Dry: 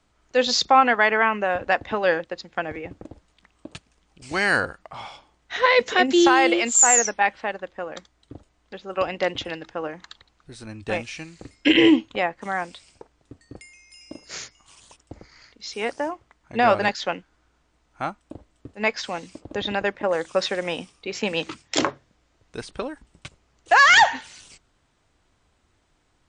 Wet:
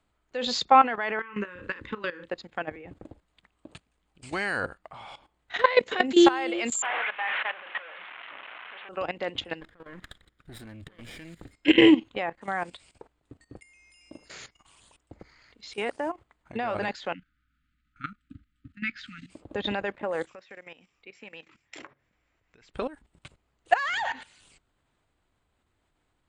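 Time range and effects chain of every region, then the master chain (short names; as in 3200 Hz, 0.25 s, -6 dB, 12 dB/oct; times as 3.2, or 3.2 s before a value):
1.19–2.29 Butterworth band-stop 700 Hz, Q 1.3 + doubler 34 ms -8 dB + compressor 20:1, threshold -25 dBFS
6.82–8.89 delta modulation 16 kbps, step -20 dBFS + HPF 1100 Hz + doubler 35 ms -12.5 dB
9.61–11.53 minimum comb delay 0.56 ms + high shelf 6000 Hz -6 dB + negative-ratio compressor -36 dBFS, ratio -0.5
17.14–19.3 brick-wall FIR band-stop 300–1200 Hz + air absorption 110 m
20.26–22.74 compressor 2:1, threshold -42 dBFS + rippled Chebyshev low-pass 7600 Hz, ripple 9 dB
23.73–24.19 compressor 2:1, threshold -21 dBFS + crackle 53/s -47 dBFS
whole clip: bell 5700 Hz -11.5 dB 0.46 oct; level quantiser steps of 15 dB; gain +1 dB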